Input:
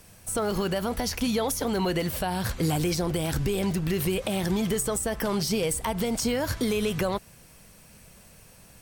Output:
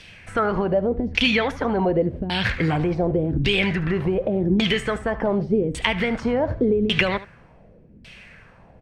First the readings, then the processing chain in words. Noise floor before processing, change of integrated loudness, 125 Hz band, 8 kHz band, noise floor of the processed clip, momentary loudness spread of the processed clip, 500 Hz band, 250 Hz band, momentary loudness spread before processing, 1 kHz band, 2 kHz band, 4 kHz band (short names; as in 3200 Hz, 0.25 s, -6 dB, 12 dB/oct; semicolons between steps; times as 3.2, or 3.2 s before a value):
-53 dBFS, +5.5 dB, +4.5 dB, -14.5 dB, -50 dBFS, 4 LU, +6.0 dB, +5.0 dB, 3 LU, +4.5 dB, +11.0 dB, +7.0 dB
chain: resonant high shelf 1500 Hz +6.5 dB, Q 1.5; LFO low-pass saw down 0.87 Hz 260–3600 Hz; echo 74 ms -16.5 dB; gain +3.5 dB